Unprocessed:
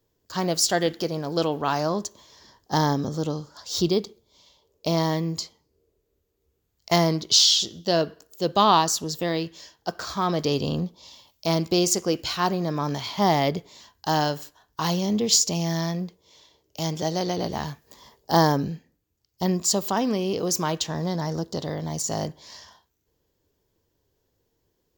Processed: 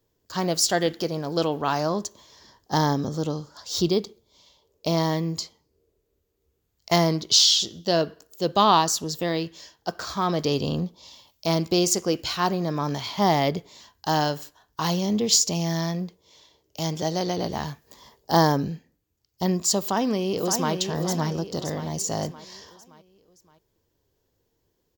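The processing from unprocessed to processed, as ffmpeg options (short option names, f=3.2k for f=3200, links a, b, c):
-filter_complex "[0:a]asplit=2[a][b];[b]afade=t=in:st=19.79:d=0.01,afade=t=out:st=20.73:d=0.01,aecho=0:1:570|1140|1710|2280|2850:0.473151|0.212918|0.0958131|0.0431159|0.0194022[c];[a][c]amix=inputs=2:normalize=0"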